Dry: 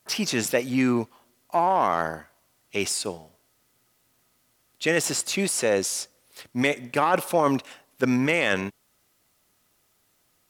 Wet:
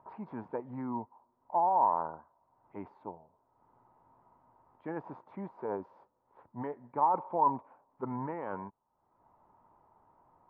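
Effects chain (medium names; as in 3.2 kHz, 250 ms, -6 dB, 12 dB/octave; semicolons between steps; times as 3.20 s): formant shift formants -2 st; upward compressor, threshold -34 dBFS; four-pole ladder low-pass 990 Hz, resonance 80%; trim -3 dB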